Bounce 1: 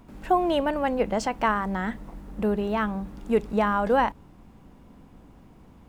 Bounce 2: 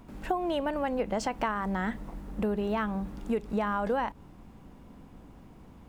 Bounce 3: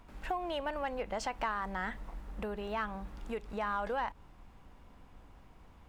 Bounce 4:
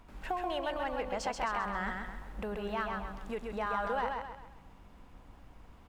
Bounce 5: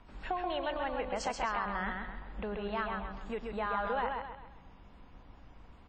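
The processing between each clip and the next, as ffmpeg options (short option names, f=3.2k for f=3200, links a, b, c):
-af "acompressor=threshold=-26dB:ratio=6"
-filter_complex "[0:a]equalizer=f=220:w=0.47:g=-13,asplit=2[a][b];[b]asoftclip=type=hard:threshold=-30dB,volume=-5dB[c];[a][c]amix=inputs=2:normalize=0,highshelf=f=5.7k:g=-8,volume=-3.5dB"
-af "aecho=1:1:132|264|396|528|660:0.631|0.259|0.106|0.0435|0.0178"
-filter_complex "[0:a]acrossover=split=250|2800[a][b][c];[c]acrusher=bits=3:mode=log:mix=0:aa=0.000001[d];[a][b][d]amix=inputs=3:normalize=0" -ar 22050 -c:a wmav2 -b:a 32k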